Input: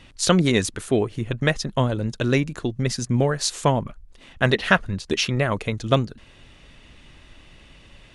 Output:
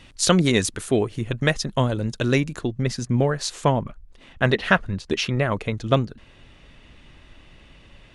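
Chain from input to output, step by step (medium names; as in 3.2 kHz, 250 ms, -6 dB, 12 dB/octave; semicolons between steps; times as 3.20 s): treble shelf 4.6 kHz +3 dB, from 2.61 s -7 dB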